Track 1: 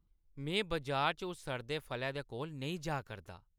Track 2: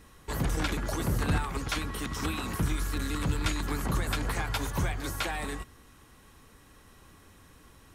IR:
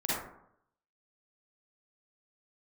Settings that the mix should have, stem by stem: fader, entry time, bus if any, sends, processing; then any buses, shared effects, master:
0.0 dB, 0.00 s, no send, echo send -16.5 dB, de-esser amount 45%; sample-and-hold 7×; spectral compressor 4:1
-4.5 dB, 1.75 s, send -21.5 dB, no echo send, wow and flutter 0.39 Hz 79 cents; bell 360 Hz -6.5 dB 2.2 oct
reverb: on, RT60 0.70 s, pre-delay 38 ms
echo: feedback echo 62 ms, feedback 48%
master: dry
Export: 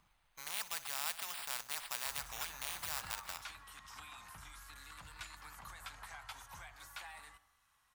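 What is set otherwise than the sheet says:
stem 2 -4.5 dB -> -16.0 dB; master: extra resonant low shelf 560 Hz -12.5 dB, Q 1.5

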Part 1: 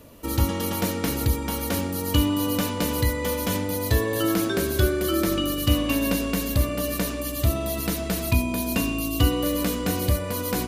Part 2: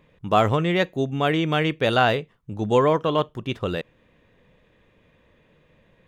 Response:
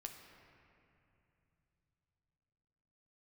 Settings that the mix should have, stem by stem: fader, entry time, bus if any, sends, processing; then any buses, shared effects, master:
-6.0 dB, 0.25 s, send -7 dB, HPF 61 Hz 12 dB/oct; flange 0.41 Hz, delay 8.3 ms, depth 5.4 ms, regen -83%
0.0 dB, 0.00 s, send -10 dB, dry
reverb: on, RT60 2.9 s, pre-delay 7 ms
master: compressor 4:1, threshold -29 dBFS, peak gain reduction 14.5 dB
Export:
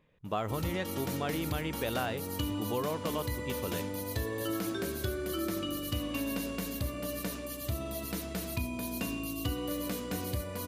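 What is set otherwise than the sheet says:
stem 2 0.0 dB -> -11.5 dB; reverb return -7.0 dB

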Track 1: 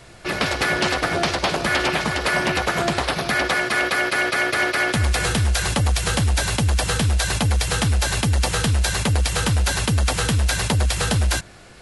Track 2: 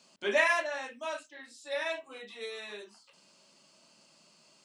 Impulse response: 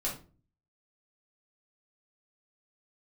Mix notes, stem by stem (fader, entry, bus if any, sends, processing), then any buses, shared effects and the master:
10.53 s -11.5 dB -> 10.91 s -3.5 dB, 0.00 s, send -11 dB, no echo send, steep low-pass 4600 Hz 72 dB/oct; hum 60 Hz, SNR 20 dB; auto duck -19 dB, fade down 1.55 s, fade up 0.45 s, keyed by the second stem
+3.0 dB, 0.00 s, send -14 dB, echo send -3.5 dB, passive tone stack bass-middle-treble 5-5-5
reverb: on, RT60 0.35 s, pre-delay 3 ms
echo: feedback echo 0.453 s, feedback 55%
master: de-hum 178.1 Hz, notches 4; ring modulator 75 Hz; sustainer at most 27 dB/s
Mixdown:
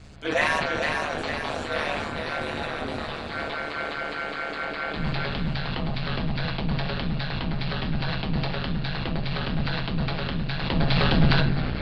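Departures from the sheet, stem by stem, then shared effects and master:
stem 1: send -11 dB -> -1 dB; stem 2: missing passive tone stack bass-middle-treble 5-5-5

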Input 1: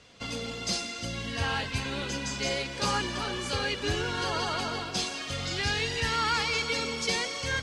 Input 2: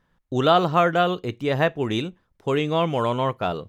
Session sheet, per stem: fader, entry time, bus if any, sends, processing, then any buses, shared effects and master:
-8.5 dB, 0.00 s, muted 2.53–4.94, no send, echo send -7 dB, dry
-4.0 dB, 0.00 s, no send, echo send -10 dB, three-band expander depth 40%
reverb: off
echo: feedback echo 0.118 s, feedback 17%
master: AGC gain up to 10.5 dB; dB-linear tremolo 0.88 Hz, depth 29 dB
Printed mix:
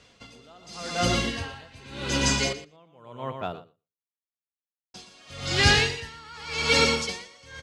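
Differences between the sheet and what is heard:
stem 1 -8.5 dB -> 0.0 dB; stem 2 -4.0 dB -> -15.5 dB

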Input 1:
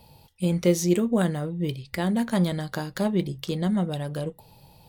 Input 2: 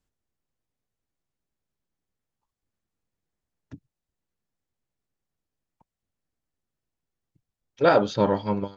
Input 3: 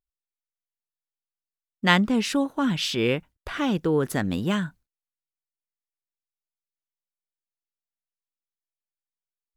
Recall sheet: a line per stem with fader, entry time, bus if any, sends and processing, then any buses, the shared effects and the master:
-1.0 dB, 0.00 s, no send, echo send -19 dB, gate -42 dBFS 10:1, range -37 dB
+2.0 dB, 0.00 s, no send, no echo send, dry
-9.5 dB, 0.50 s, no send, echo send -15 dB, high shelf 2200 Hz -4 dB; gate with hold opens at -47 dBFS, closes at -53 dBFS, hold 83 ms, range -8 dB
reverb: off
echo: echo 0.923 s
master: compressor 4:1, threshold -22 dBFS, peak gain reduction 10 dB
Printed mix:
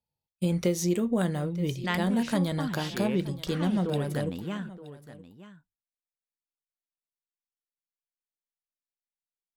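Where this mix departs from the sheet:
stem 2: muted; stem 3: entry 0.50 s -> 0.00 s

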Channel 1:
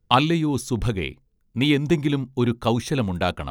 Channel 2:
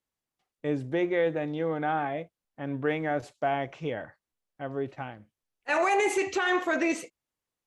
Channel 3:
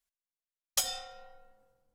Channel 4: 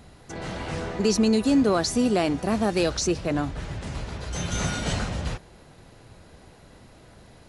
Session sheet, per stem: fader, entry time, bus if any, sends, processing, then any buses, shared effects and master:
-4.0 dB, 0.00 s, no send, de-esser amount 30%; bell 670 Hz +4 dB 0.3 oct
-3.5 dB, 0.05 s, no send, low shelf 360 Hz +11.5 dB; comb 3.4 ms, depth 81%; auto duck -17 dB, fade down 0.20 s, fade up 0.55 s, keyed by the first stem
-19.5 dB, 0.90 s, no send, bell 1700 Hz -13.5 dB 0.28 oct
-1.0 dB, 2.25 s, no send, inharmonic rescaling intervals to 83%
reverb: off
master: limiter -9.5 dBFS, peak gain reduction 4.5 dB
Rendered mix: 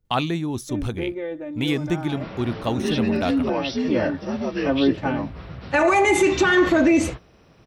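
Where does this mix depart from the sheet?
stem 2 -3.5 dB -> +7.0 dB; stem 4: entry 2.25 s -> 1.80 s

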